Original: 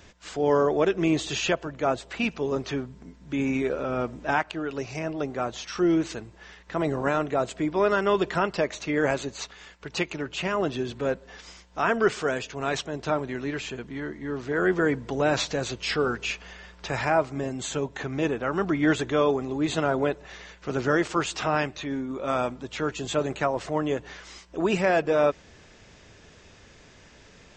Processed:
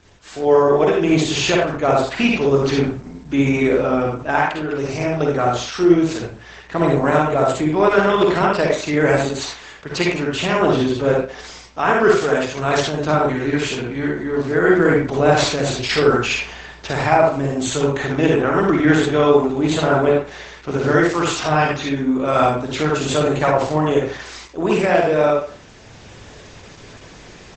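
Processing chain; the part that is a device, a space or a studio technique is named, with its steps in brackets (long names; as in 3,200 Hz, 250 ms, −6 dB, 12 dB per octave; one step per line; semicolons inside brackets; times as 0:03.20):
speakerphone in a meeting room (convolution reverb RT60 0.45 s, pre-delay 44 ms, DRR −1.5 dB; far-end echo of a speakerphone 170 ms, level −28 dB; automatic gain control gain up to 9.5 dB; Opus 12 kbit/s 48,000 Hz)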